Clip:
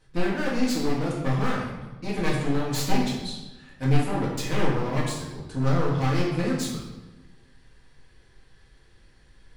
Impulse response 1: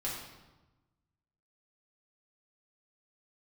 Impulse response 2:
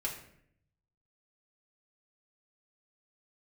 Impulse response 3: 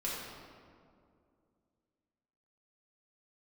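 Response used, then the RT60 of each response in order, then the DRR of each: 1; 1.1 s, 0.65 s, 2.3 s; -6.5 dB, -4.0 dB, -7.5 dB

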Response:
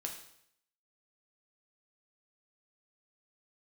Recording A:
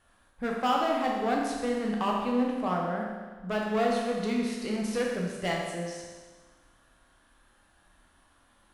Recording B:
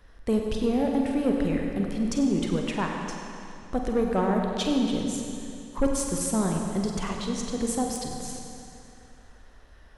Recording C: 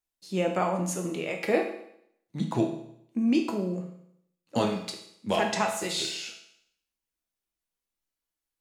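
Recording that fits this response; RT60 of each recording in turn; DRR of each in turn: C; 1.4 s, 2.7 s, 0.70 s; -2.0 dB, 1.0 dB, 1.5 dB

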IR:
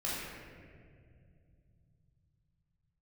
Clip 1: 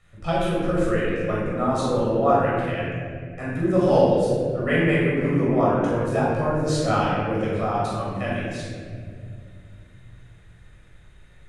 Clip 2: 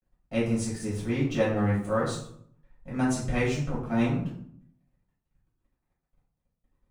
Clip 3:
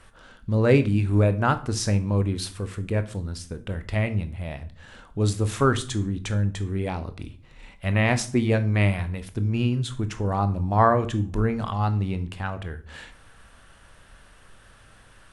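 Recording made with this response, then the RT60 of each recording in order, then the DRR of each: 1; 2.2 s, 0.65 s, 0.45 s; -8.0 dB, -9.0 dB, 10.0 dB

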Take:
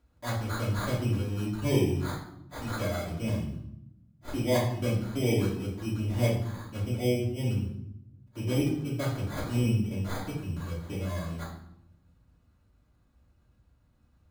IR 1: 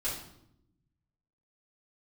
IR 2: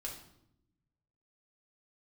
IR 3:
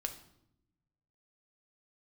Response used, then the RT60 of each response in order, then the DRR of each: 1; 0.75 s, 0.80 s, 0.80 s; -11.0 dB, -2.5 dB, 5.0 dB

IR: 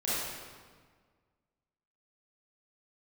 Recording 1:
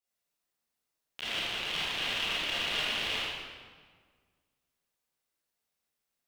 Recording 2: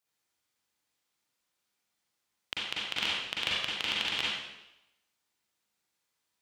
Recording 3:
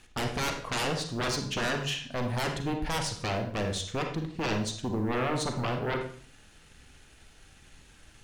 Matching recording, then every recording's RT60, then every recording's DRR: 1; 1.6 s, 0.90 s, 0.50 s; -10.5 dB, -6.5 dB, 4.0 dB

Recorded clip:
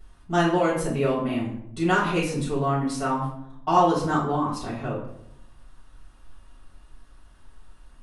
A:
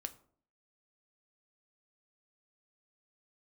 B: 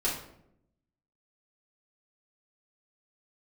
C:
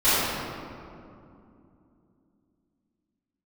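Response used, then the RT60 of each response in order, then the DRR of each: B; 0.55 s, 0.75 s, 2.6 s; 8.5 dB, -7.5 dB, -19.5 dB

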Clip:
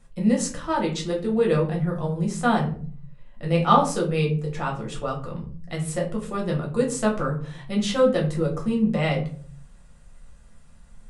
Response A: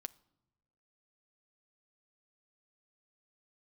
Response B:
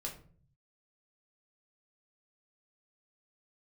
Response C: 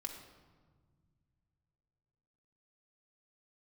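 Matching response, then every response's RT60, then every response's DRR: B; no single decay rate, 0.50 s, 1.6 s; 13.0 dB, -1.0 dB, 1.5 dB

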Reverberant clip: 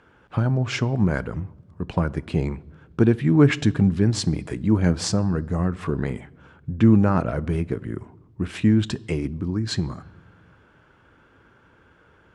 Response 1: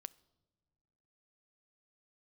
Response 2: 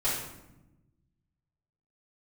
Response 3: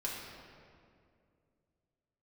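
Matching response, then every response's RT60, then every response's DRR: 1; no single decay rate, 0.95 s, 2.3 s; 19.5 dB, -11.5 dB, -5.5 dB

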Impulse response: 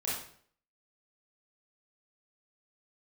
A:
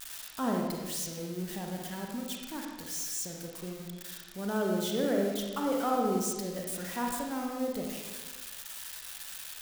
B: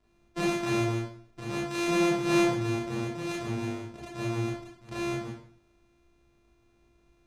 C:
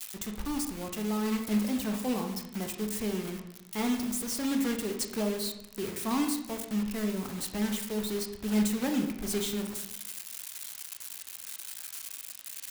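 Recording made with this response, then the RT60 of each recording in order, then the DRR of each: B; 1.3 s, 0.55 s, 0.90 s; 0.0 dB, -7.5 dB, 4.0 dB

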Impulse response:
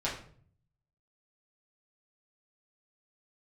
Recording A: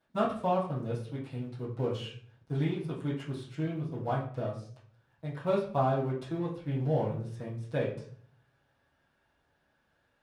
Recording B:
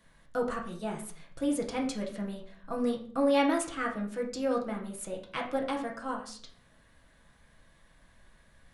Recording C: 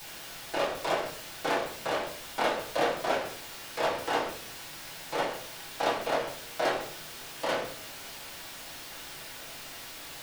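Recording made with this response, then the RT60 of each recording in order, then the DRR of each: C; 0.50 s, 0.50 s, 0.50 s; -12.5 dB, -1.0 dB, -7.5 dB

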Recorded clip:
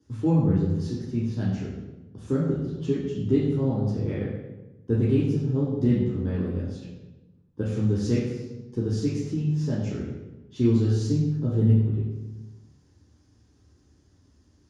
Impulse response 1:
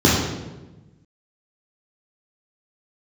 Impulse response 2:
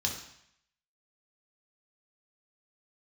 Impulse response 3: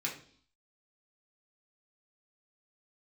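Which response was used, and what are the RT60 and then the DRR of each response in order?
1; 1.1 s, 0.70 s, 0.55 s; -6.0 dB, -1.0 dB, -3.5 dB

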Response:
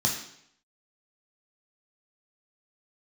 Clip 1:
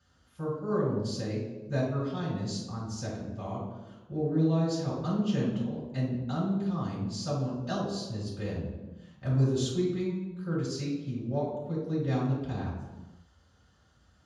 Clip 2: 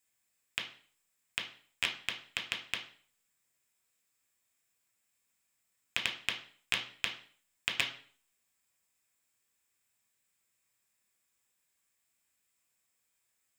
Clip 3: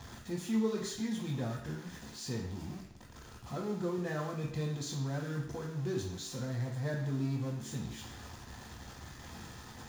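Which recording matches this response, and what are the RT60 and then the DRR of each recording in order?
3; no single decay rate, 0.45 s, 0.70 s; -9.5 dB, 1.5 dB, -0.5 dB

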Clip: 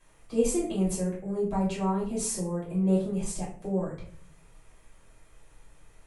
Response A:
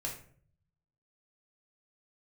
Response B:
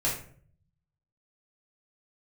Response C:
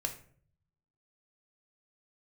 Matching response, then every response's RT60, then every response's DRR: B; 0.50 s, 0.50 s, 0.55 s; -2.0 dB, -7.0 dB, 4.0 dB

